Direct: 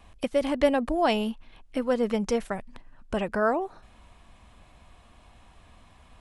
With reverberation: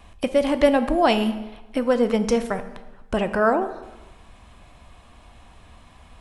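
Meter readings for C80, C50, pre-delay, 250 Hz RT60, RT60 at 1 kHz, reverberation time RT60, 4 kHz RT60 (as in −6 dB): 14.5 dB, 12.5 dB, 9 ms, 1.0 s, 1.2 s, 1.1 s, 0.85 s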